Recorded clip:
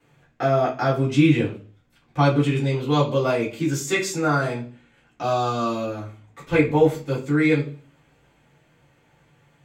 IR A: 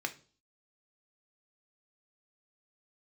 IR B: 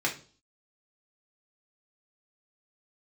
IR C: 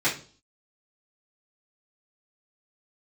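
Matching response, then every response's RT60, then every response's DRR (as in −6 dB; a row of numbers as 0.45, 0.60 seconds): C; 0.40, 0.40, 0.40 seconds; 5.5, −2.0, −10.0 decibels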